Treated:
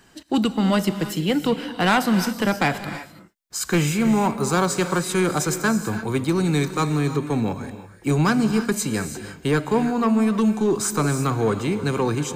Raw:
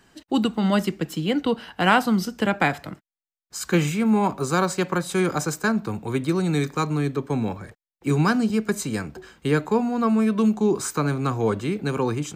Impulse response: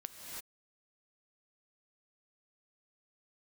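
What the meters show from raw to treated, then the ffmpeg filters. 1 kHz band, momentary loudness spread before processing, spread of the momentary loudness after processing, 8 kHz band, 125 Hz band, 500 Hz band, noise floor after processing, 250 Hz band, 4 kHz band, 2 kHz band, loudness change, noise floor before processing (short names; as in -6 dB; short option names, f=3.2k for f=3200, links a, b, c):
+1.0 dB, 8 LU, 7 LU, +5.5 dB, +2.0 dB, +1.0 dB, -47 dBFS, +1.5 dB, +3.0 dB, +1.0 dB, +1.5 dB, under -85 dBFS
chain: -filter_complex "[0:a]asoftclip=type=tanh:threshold=-14.5dB,asplit=2[a][b];[1:a]atrim=start_sample=2205,highshelf=f=3.7k:g=8.5[c];[b][c]afir=irnorm=-1:irlink=0,volume=-4dB[d];[a][d]amix=inputs=2:normalize=0"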